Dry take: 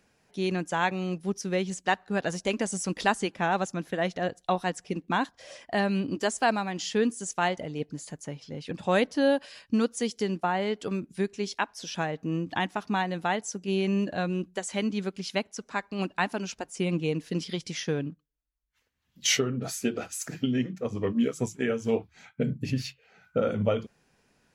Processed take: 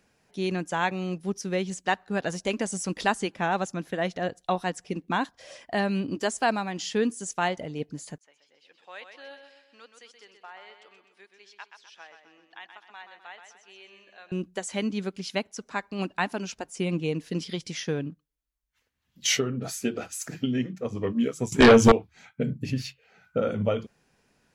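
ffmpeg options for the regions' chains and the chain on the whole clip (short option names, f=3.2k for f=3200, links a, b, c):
-filter_complex "[0:a]asettb=1/sr,asplit=3[a][b][c];[a]atrim=end=8.184[d];[b]atrim=start=8.18:end=14.32,asetpts=PTS-STARTPTS,afade=t=in:d=0.004:c=qsin,afade=t=out:st=6.136:d=0.004:c=qsin,highpass=370,lowpass=2.4k,aderivative,aecho=1:1:127|254|381|508|635|762:0.422|0.202|0.0972|0.0466|0.0224|0.0107,atrim=end_sample=270774[e];[c]atrim=start=14.316[f];[d][e]acrossfade=d=0.004:c1=hsin:c2=qsin[g];[g][f]acrossfade=d=0.004:c1=qsin:c2=hsin,asettb=1/sr,asplit=3[h][i][j];[h]atrim=end=21.524[k];[i]atrim=start=21.52:end=21.92,asetpts=PTS-STARTPTS,afade=t=in:d=0.004:c=qsin,afade=t=out:st=0.396:d=0.004:c=qsin,acontrast=50,aeval=exprs='0.355*sin(PI/2*2.82*val(0)/0.355)':c=same[l];[j]atrim=start=21.916[m];[k][l]acrossfade=d=0.004:c1=hsin:c2=qsin[n];[n][m]acrossfade=d=0.004:c1=qsin:c2=hsin"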